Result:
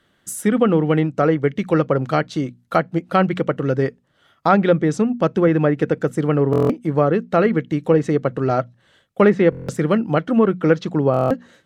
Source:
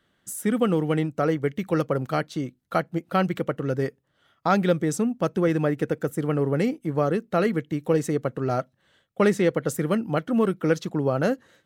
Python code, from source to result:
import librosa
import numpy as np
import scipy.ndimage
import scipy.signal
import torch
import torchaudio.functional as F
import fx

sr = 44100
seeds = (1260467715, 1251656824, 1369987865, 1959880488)

y = fx.hum_notches(x, sr, base_hz=60, count=4)
y = fx.env_lowpass_down(y, sr, base_hz=2200.0, full_db=-17.0)
y = fx.buffer_glitch(y, sr, at_s=(6.51, 9.5, 11.12), block=1024, repeats=7)
y = y * 10.0 ** (6.5 / 20.0)